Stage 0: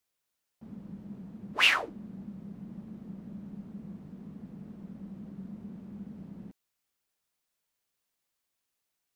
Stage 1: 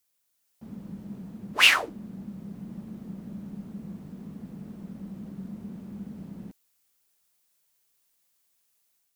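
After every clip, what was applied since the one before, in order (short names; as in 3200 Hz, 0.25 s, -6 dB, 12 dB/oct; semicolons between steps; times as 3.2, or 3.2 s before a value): high shelf 5400 Hz +10 dB; AGC gain up to 4 dB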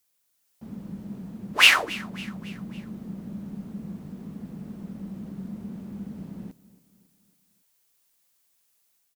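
feedback echo 0.277 s, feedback 52%, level -19.5 dB; gain +2.5 dB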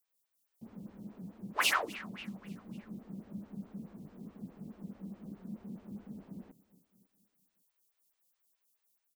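photocell phaser 4.7 Hz; gain -5.5 dB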